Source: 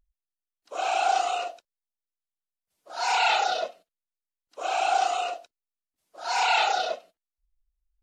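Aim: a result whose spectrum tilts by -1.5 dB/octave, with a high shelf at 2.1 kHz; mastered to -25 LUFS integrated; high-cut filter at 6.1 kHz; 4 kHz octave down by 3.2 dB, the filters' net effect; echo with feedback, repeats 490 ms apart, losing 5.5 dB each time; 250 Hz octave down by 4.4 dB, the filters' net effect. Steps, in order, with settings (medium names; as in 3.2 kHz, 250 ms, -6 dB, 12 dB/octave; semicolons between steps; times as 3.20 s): low-pass 6.1 kHz; peaking EQ 250 Hz -8 dB; treble shelf 2.1 kHz +4.5 dB; peaking EQ 4 kHz -8 dB; feedback delay 490 ms, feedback 53%, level -5.5 dB; trim +2 dB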